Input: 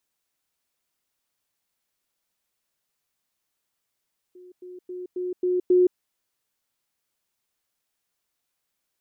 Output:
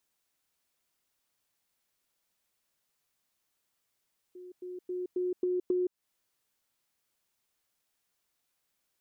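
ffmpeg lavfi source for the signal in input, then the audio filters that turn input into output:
-f lavfi -i "aevalsrc='pow(10,(-44+6*floor(t/0.27))/20)*sin(2*PI*362*t)*clip(min(mod(t,0.27),0.17-mod(t,0.27))/0.005,0,1)':d=1.62:s=44100"
-af "acompressor=threshold=-29dB:ratio=6"

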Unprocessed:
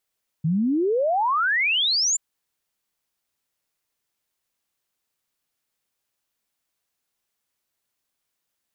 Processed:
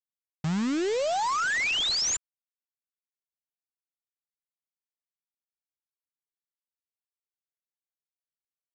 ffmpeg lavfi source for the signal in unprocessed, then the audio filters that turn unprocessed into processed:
-f lavfi -i "aevalsrc='0.119*clip(min(t,1.73-t)/0.01,0,1)*sin(2*PI*150*1.73/log(7400/150)*(exp(log(7400/150)*t/1.73)-1))':d=1.73:s=44100"
-af "adynamicequalizer=threshold=0.0224:dfrequency=1400:dqfactor=1.1:tfrequency=1400:tqfactor=1.1:attack=5:release=100:ratio=0.375:range=2:mode=boostabove:tftype=bell,alimiter=level_in=0.5dB:limit=-24dB:level=0:latency=1,volume=-0.5dB,aresample=16000,acrusher=bits=6:dc=4:mix=0:aa=0.000001,aresample=44100"

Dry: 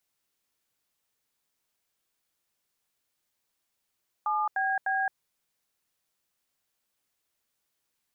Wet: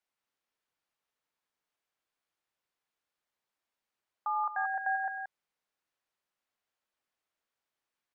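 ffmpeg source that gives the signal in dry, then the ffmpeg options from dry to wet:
-f lavfi -i "aevalsrc='0.0422*clip(min(mod(t,0.301),0.218-mod(t,0.301))/0.002,0,1)*(eq(floor(t/0.301),0)*(sin(2*PI*852*mod(t,0.301))+sin(2*PI*1209*mod(t,0.301)))+eq(floor(t/0.301),1)*(sin(2*PI*770*mod(t,0.301))+sin(2*PI*1633*mod(t,0.301)))+eq(floor(t/0.301),2)*(sin(2*PI*770*mod(t,0.301))+sin(2*PI*1633*mod(t,0.301))))':d=0.903:s=44100"
-filter_complex "[0:a]lowpass=f=1.4k:p=1,lowshelf=f=420:g=-11,asplit=2[a][b];[b]aecho=0:1:102|177.8:0.251|0.447[c];[a][c]amix=inputs=2:normalize=0"

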